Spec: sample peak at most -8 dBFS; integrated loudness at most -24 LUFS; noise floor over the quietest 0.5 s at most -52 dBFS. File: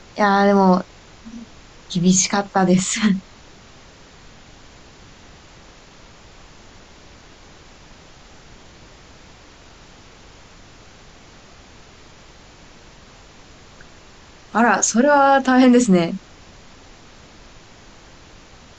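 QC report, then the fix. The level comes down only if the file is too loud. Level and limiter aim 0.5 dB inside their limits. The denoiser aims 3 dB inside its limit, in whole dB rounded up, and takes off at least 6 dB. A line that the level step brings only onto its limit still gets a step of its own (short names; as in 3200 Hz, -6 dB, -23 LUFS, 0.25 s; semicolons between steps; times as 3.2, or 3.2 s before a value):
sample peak -4.5 dBFS: fail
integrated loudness -16.0 LUFS: fail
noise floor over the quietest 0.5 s -45 dBFS: fail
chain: gain -8.5 dB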